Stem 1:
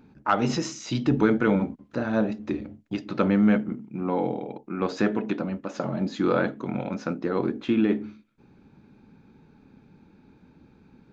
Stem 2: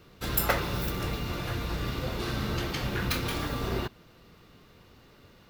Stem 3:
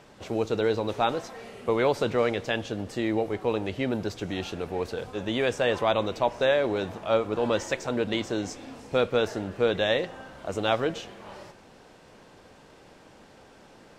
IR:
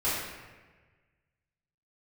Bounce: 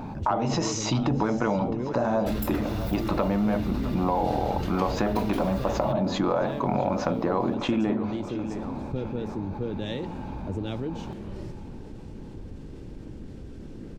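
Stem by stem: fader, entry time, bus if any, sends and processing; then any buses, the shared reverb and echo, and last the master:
+0.5 dB, 0.00 s, no send, echo send −17.5 dB, flat-topped bell 790 Hz +12 dB 1.2 octaves; downward compressor, threshold −25 dBFS, peak gain reduction 15 dB
−4.5 dB, 2.05 s, no send, no echo send, downward compressor 4 to 1, threshold −37 dBFS, peak gain reduction 14.5 dB
−6.0 dB, 0.00 s, no send, no echo send, low shelf with overshoot 490 Hz +13.5 dB, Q 1.5; downward compressor, threshold −24 dBFS, peak gain reduction 14 dB; multiband upward and downward expander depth 100%; automatic ducking −9 dB, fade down 0.30 s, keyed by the first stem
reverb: not used
echo: repeating echo 662 ms, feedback 50%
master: low-shelf EQ 100 Hz +12 dB; envelope flattener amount 50%

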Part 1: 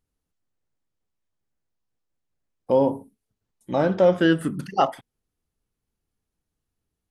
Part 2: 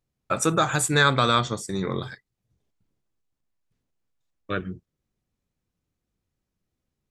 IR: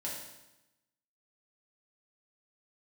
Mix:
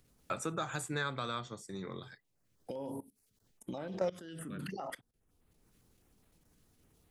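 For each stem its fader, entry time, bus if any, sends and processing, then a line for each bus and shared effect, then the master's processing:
−4.0 dB, 0.00 s, no send, brickwall limiter −14 dBFS, peak gain reduction 7 dB; output level in coarse steps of 21 dB; notch on a step sequencer 9.8 Hz 810–5,700 Hz
−13.5 dB, 0.00 s, no send, automatic ducking −14 dB, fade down 1.85 s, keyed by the first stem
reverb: not used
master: multiband upward and downward compressor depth 70%

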